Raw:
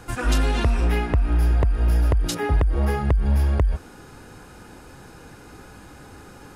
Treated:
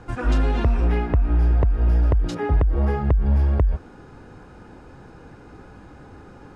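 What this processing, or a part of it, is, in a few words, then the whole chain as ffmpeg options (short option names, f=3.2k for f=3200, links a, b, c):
through cloth: -af "lowpass=6.9k,highshelf=f=2.1k:g=-12,volume=1dB"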